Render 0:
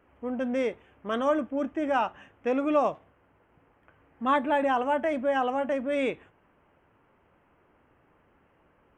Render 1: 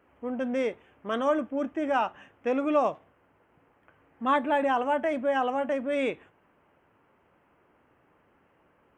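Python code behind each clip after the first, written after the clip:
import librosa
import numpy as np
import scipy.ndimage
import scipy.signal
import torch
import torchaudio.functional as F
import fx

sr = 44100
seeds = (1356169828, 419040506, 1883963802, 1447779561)

y = fx.low_shelf(x, sr, hz=66.0, db=-11.5)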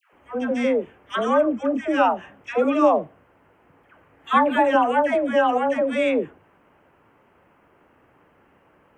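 y = fx.dispersion(x, sr, late='lows', ms=132.0, hz=890.0)
y = y * librosa.db_to_amplitude(7.0)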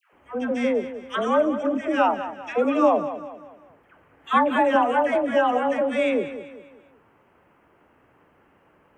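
y = fx.echo_feedback(x, sr, ms=195, feedback_pct=41, wet_db=-12.0)
y = y * librosa.db_to_amplitude(-1.5)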